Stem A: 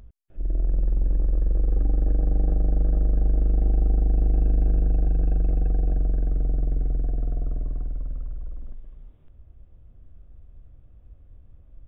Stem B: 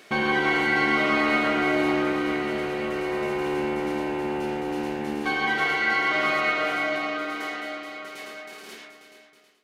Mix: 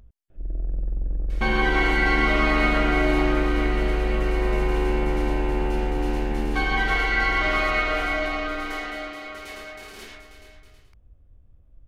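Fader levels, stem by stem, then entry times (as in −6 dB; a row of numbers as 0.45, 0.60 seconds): −4.5, +0.5 decibels; 0.00, 1.30 seconds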